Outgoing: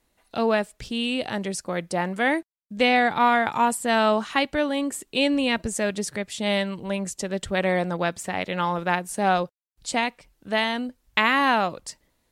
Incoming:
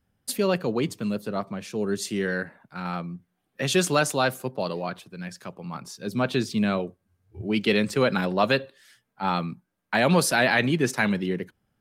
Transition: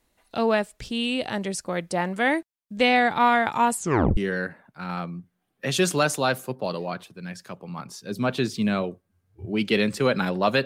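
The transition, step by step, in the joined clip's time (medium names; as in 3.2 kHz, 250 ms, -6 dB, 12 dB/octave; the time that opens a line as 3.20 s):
outgoing
3.76 s: tape stop 0.41 s
4.17 s: go over to incoming from 2.13 s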